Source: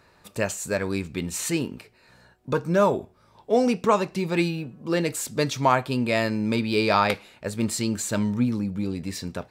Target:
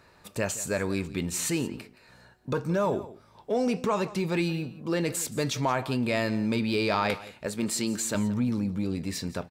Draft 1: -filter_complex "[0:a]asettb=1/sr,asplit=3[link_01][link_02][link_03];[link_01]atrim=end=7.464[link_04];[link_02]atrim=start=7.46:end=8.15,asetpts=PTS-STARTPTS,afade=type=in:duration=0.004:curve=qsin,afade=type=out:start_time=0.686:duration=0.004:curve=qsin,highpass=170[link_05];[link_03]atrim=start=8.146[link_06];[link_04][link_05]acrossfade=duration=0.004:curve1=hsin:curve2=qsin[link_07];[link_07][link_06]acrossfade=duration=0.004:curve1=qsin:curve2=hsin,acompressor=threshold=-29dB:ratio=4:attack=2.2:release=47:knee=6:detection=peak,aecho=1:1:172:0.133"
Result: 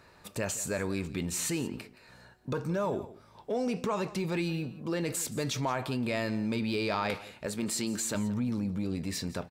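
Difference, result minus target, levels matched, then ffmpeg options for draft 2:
downward compressor: peak gain reduction +5 dB
-filter_complex "[0:a]asettb=1/sr,asplit=3[link_01][link_02][link_03];[link_01]atrim=end=7.464[link_04];[link_02]atrim=start=7.46:end=8.15,asetpts=PTS-STARTPTS,afade=type=in:duration=0.004:curve=qsin,afade=type=out:start_time=0.686:duration=0.004:curve=qsin,highpass=170[link_05];[link_03]atrim=start=8.146[link_06];[link_04][link_05]acrossfade=duration=0.004:curve1=hsin:curve2=qsin[link_07];[link_07][link_06]acrossfade=duration=0.004:curve1=qsin:curve2=hsin,acompressor=threshold=-22.5dB:ratio=4:attack=2.2:release=47:knee=6:detection=peak,aecho=1:1:172:0.133"

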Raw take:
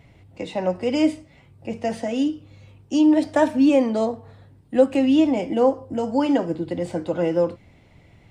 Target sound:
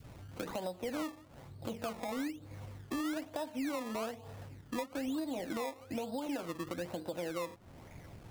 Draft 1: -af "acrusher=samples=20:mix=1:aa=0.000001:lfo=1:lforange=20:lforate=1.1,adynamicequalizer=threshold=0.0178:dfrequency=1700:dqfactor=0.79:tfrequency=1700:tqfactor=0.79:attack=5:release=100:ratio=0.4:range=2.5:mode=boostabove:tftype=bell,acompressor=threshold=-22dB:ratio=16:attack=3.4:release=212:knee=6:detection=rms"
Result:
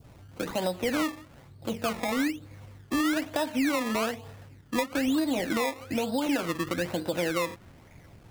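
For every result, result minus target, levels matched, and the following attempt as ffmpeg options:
downward compressor: peak gain reduction −11.5 dB; 2,000 Hz band +3.0 dB
-af "acrusher=samples=20:mix=1:aa=0.000001:lfo=1:lforange=20:lforate=1.1,adynamicequalizer=threshold=0.0178:dfrequency=1700:dqfactor=0.79:tfrequency=1700:tqfactor=0.79:attack=5:release=100:ratio=0.4:range=2.5:mode=boostabove:tftype=bell,acompressor=threshold=-33dB:ratio=16:attack=3.4:release=212:knee=6:detection=rms"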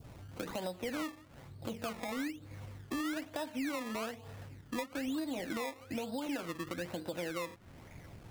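2,000 Hz band +3.5 dB
-af "acrusher=samples=20:mix=1:aa=0.000001:lfo=1:lforange=20:lforate=1.1,adynamicequalizer=threshold=0.0178:dfrequency=790:dqfactor=0.79:tfrequency=790:tqfactor=0.79:attack=5:release=100:ratio=0.4:range=2.5:mode=boostabove:tftype=bell,acompressor=threshold=-33dB:ratio=16:attack=3.4:release=212:knee=6:detection=rms"

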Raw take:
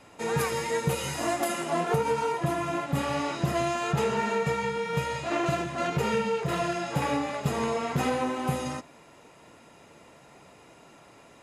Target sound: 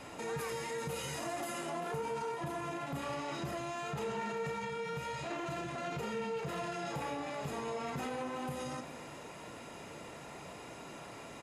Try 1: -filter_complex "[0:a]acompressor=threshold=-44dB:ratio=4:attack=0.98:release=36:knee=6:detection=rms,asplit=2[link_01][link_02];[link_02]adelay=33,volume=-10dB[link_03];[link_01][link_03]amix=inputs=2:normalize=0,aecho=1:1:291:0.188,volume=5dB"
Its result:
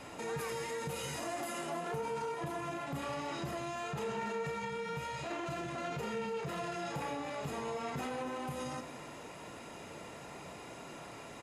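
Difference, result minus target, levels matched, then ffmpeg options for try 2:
echo 101 ms early
-filter_complex "[0:a]acompressor=threshold=-44dB:ratio=4:attack=0.98:release=36:knee=6:detection=rms,asplit=2[link_01][link_02];[link_02]adelay=33,volume=-10dB[link_03];[link_01][link_03]amix=inputs=2:normalize=0,aecho=1:1:392:0.188,volume=5dB"

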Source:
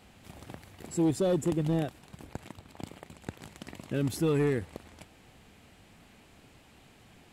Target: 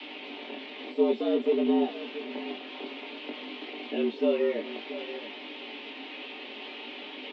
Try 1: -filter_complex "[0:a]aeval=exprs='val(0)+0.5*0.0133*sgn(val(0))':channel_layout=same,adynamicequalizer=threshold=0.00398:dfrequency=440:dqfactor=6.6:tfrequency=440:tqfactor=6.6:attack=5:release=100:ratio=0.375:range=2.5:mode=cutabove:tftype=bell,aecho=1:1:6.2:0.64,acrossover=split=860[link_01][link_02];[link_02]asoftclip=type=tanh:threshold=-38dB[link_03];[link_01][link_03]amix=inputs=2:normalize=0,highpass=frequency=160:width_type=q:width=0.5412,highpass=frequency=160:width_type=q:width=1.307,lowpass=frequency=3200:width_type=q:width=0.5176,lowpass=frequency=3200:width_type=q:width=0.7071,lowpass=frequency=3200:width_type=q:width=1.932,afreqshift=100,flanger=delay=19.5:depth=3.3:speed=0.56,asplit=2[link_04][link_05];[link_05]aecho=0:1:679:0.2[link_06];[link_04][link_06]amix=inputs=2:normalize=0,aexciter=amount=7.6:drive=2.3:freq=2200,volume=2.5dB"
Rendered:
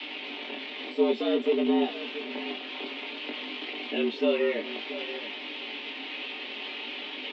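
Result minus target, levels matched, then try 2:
soft clipping: distortion −7 dB
-filter_complex "[0:a]aeval=exprs='val(0)+0.5*0.0133*sgn(val(0))':channel_layout=same,adynamicequalizer=threshold=0.00398:dfrequency=440:dqfactor=6.6:tfrequency=440:tqfactor=6.6:attack=5:release=100:ratio=0.375:range=2.5:mode=cutabove:tftype=bell,aecho=1:1:6.2:0.64,acrossover=split=860[link_01][link_02];[link_02]asoftclip=type=tanh:threshold=-48.5dB[link_03];[link_01][link_03]amix=inputs=2:normalize=0,highpass=frequency=160:width_type=q:width=0.5412,highpass=frequency=160:width_type=q:width=1.307,lowpass=frequency=3200:width_type=q:width=0.5176,lowpass=frequency=3200:width_type=q:width=0.7071,lowpass=frequency=3200:width_type=q:width=1.932,afreqshift=100,flanger=delay=19.5:depth=3.3:speed=0.56,asplit=2[link_04][link_05];[link_05]aecho=0:1:679:0.2[link_06];[link_04][link_06]amix=inputs=2:normalize=0,aexciter=amount=7.6:drive=2.3:freq=2200,volume=2.5dB"

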